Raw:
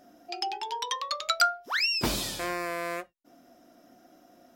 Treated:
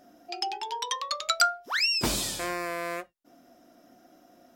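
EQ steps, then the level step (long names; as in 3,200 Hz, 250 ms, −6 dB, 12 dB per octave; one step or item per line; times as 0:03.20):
dynamic equaliser 8,100 Hz, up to +6 dB, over −46 dBFS, Q 1.4
0.0 dB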